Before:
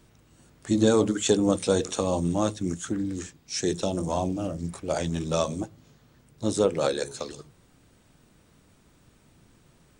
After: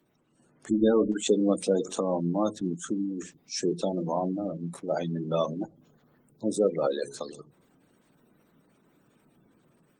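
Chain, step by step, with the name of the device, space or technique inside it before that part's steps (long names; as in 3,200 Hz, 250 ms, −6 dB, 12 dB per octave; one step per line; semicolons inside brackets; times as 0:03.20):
noise-suppressed video call (high-pass filter 150 Hz 24 dB per octave; gate on every frequency bin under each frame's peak −20 dB strong; automatic gain control gain up to 6.5 dB; level −7 dB; Opus 24 kbit/s 48,000 Hz)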